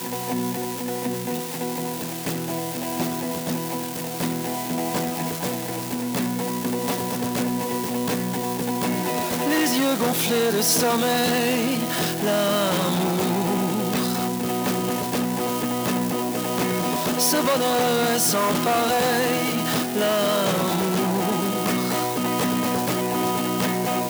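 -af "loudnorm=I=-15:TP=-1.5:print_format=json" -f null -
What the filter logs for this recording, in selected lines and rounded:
"input_i" : "-23.0",
"input_tp" : "-9.6",
"input_lra" : "6.0",
"input_thresh" : "-33.0",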